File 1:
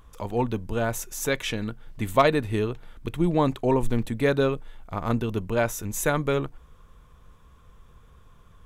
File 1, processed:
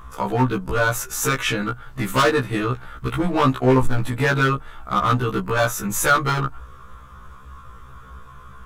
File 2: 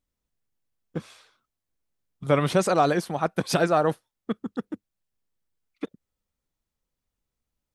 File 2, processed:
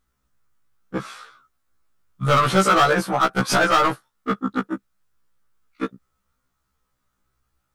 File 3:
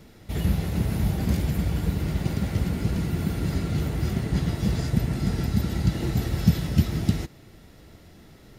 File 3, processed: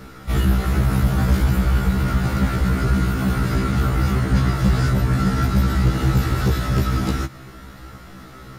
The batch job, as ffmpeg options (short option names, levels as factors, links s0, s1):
-filter_complex "[0:a]equalizer=f=1300:t=o:w=0.72:g=14,asplit=2[s0][s1];[s1]acompressor=threshold=0.0398:ratio=16,volume=0.794[s2];[s0][s2]amix=inputs=2:normalize=0,bass=f=250:g=3,treble=f=4000:g=1,asoftclip=type=hard:threshold=0.178,afftfilt=real='re*1.73*eq(mod(b,3),0)':imag='im*1.73*eq(mod(b,3),0)':win_size=2048:overlap=0.75,volume=1.68"